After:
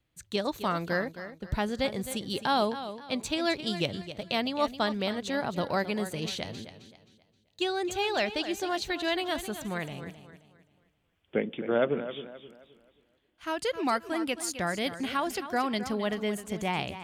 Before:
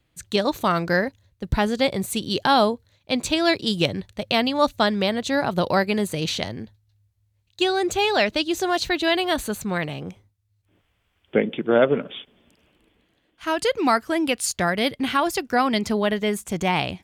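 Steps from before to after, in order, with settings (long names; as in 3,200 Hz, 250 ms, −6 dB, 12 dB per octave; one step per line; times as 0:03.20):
feedback echo with a swinging delay time 264 ms, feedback 35%, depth 65 cents, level −12 dB
level −8.5 dB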